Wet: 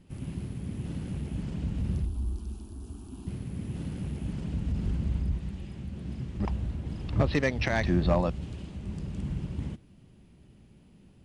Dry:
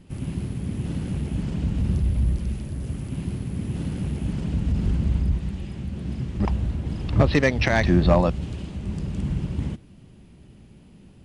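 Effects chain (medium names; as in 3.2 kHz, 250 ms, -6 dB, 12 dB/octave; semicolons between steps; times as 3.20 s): 2.05–3.27 s: static phaser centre 540 Hz, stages 6; trim -7 dB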